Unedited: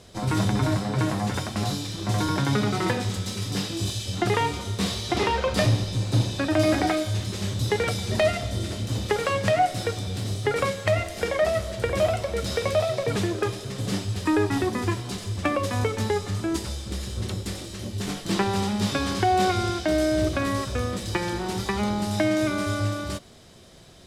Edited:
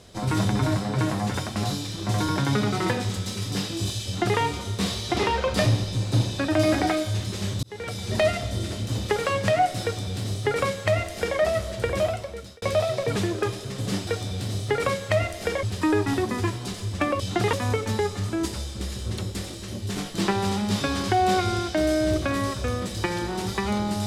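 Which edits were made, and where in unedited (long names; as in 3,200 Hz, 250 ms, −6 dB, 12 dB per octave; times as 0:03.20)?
0:04.06–0:04.39: duplicate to 0:15.64
0:07.63–0:08.18: fade in
0:09.83–0:11.39: duplicate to 0:14.07
0:11.90–0:12.62: fade out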